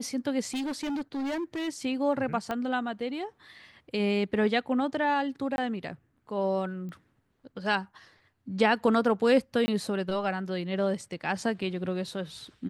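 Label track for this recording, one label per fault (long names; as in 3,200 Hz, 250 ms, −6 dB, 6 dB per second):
0.540000	1.690000	clipping −29 dBFS
2.510000	2.510000	click −18 dBFS
5.560000	5.580000	drop-out 21 ms
6.890000	6.890000	click −32 dBFS
9.660000	9.680000	drop-out 20 ms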